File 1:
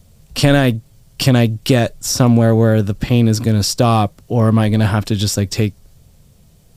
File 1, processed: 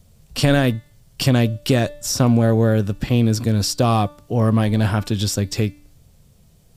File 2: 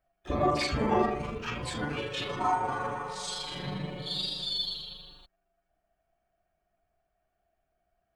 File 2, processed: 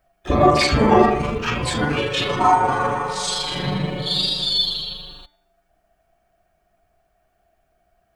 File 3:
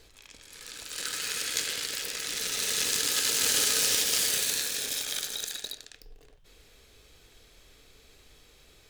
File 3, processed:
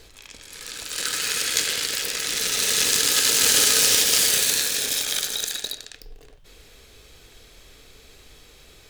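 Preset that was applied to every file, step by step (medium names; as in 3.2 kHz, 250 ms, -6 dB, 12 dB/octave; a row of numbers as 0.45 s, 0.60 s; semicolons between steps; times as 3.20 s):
de-hum 293.6 Hz, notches 16; normalise loudness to -19 LUFS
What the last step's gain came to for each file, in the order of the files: -4.0 dB, +12.5 dB, +7.5 dB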